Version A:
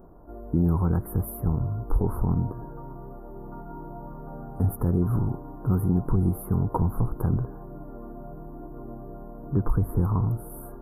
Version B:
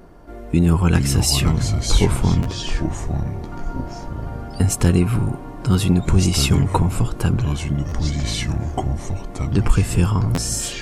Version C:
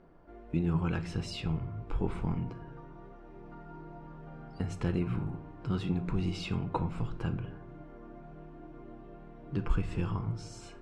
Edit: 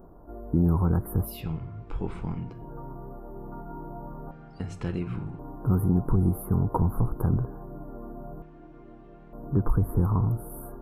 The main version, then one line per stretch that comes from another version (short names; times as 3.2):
A
1.36–2.62 from C, crossfade 0.24 s
4.31–5.39 from C
8.42–9.33 from C
not used: B